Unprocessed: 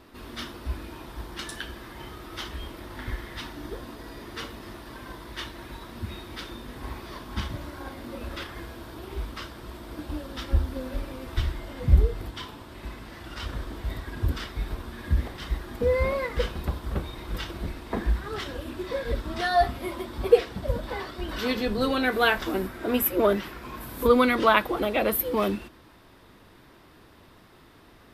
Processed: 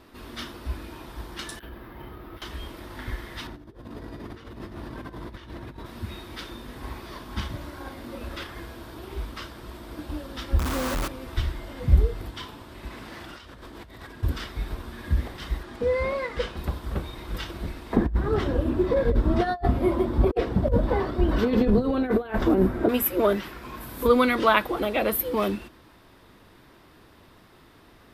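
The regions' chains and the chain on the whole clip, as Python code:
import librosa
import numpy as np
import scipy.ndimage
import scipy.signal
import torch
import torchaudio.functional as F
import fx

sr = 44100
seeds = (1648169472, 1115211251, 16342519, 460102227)

y = fx.chain(x, sr, fx.over_compress(threshold_db=-38.0, ratio=-0.5),
    fx.spacing_loss(db_at_10k=28),
    fx.resample_bad(factor=3, down='filtered', up='hold'), at=(1.59, 2.42))
y = fx.chain(y, sr, fx.highpass(hz=66.0, slope=12),
    fx.tilt_eq(slope=-2.5),
    fx.over_compress(threshold_db=-39.0, ratio=-0.5), at=(3.47, 5.86))
y = fx.chain(y, sr, fx.peak_eq(hz=1200.0, db=11.0, octaves=0.69),
    fx.quant_companded(bits=2), at=(10.59, 11.08))
y = fx.chain(y, sr, fx.low_shelf(hz=82.0, db=-11.0),
    fx.over_compress(threshold_db=-43.0, ratio=-1.0),
    fx.doppler_dist(depth_ms=0.11), at=(12.88, 14.23))
y = fx.chain(y, sr, fx.bessel_lowpass(hz=7600.0, order=2),
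    fx.low_shelf(hz=150.0, db=-7.0), at=(15.63, 16.57))
y = fx.chain(y, sr, fx.over_compress(threshold_db=-28.0, ratio=-0.5),
    fx.tilt_shelf(db=9.5, hz=1300.0), at=(17.96, 22.89))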